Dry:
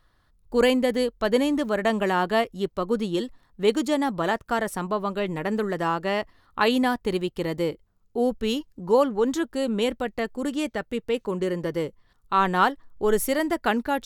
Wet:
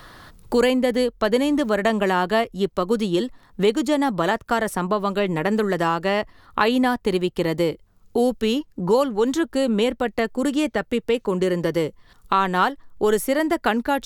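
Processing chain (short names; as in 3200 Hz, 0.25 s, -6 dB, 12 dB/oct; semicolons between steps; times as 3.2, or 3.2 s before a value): three-band squash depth 70%; gain +3 dB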